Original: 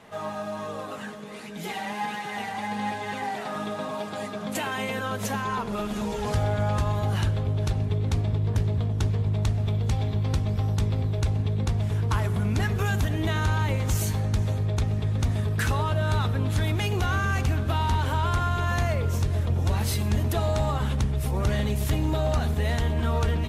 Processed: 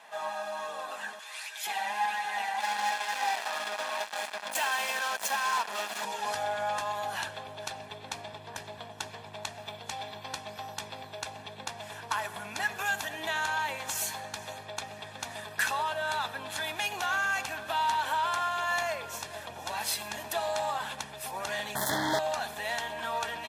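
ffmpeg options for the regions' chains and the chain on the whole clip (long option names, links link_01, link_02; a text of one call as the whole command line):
ffmpeg -i in.wav -filter_complex "[0:a]asettb=1/sr,asplit=3[link_01][link_02][link_03];[link_01]atrim=end=1.194[link_04];[link_02]atrim=start=1.19:end=1.67,asetpts=PTS-STARTPTS,afade=type=in:duration=0.004:curve=qsin,afade=type=out:start_time=0.476:duration=0.004:curve=qsin,highpass=690,tiltshelf=frequency=1200:gain=-6.5[link_05];[link_03]atrim=start=1.666[link_06];[link_04][link_05]acrossfade=duration=0.004:curve1=hsin:curve2=qsin[link_07];[link_07][link_06]acrossfade=duration=0.004:curve1=qsin:curve2=hsin,asettb=1/sr,asplit=3[link_08][link_09][link_10];[link_08]atrim=end=2.604[link_11];[link_09]atrim=start=2.6:end=6.05,asetpts=PTS-STARTPTS,afade=type=in:duration=0.004:curve=qsin,afade=type=out:start_time=3.446:duration=0.004:curve=qsin,highpass=220,acrusher=bits=4:mix=0:aa=0.5[link_12];[link_10]atrim=start=6.046[link_13];[link_11][link_12]acrossfade=duration=0.004:curve1=hsin:curve2=qsin[link_14];[link_14][link_13]acrossfade=duration=0.004:curve1=qsin:curve2=hsin,asettb=1/sr,asplit=3[link_15][link_16][link_17];[link_15]atrim=end=21.754[link_18];[link_16]atrim=start=21.75:end=22.19,asetpts=PTS-STARTPTS,afade=type=in:duration=0.004:curve=qsin,afade=type=out:start_time=0.436:duration=0.004:curve=qsin,equalizer=frequency=200:width=0.43:gain=13.5,acrusher=bits=3:mix=0:aa=0.5,asuperstop=centerf=2600:order=12:qfactor=2.4[link_19];[link_17]atrim=start=22.186[link_20];[link_18][link_19]acrossfade=duration=0.004:curve1=hsin:curve2=qsin[link_21];[link_21][link_20]acrossfade=duration=0.004:curve1=qsin:curve2=hsin,highpass=700,aecho=1:1:1.2:0.48" out.wav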